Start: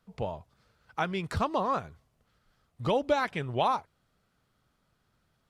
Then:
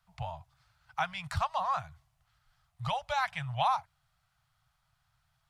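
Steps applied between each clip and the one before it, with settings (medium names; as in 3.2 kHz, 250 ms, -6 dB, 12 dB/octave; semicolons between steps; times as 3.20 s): Chebyshev band-stop 140–730 Hz, order 3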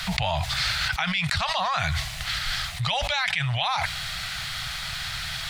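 graphic EQ 125/250/1000/2000/4000/8000 Hz -6/+10/-6/+10/+11/+4 dB; level flattener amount 100%; trim -2 dB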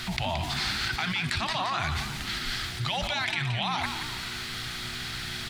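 mains buzz 120 Hz, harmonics 3, -43 dBFS -3 dB/octave; frequency-shifting echo 173 ms, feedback 50%, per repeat +61 Hz, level -8 dB; trim -4.5 dB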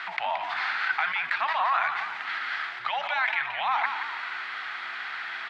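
Butterworth band-pass 1.3 kHz, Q 0.95; trim +6.5 dB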